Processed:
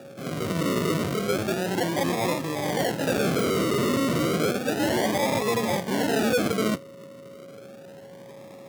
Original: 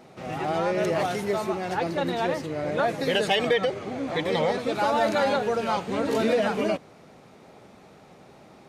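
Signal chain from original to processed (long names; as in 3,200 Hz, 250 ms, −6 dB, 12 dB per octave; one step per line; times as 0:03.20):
0:03.22–0:04.35: sign of each sample alone
parametric band 690 Hz −5.5 dB 0.82 octaves
sample-and-hold swept by an LFO 42×, swing 60% 0.32 Hz
steady tone 550 Hz −48 dBFS
tube saturation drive 26 dB, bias 0.5
high-pass filter 110 Hz 24 dB per octave
level +7 dB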